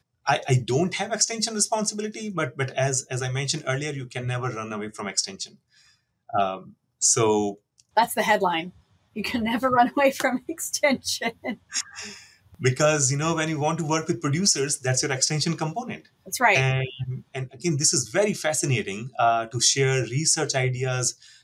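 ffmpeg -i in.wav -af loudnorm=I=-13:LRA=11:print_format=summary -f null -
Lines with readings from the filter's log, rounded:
Input Integrated:    -23.7 LUFS
Input True Peak:      -7.3 dBTP
Input LRA:             4.8 LU
Input Threshold:     -34.1 LUFS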